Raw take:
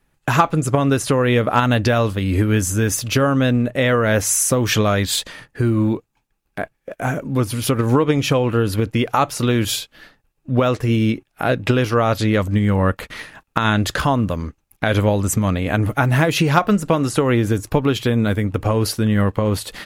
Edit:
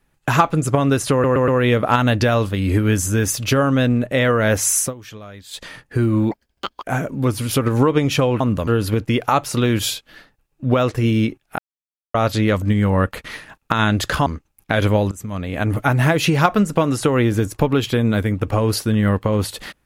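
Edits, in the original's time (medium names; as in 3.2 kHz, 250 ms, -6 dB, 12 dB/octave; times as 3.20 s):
1.12 s: stutter 0.12 s, 4 plays
4.44–5.29 s: dip -20 dB, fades 0.14 s
5.95–6.96 s: speed 193%
11.44–12.00 s: mute
14.12–14.39 s: move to 8.53 s
15.24–15.92 s: fade in, from -21.5 dB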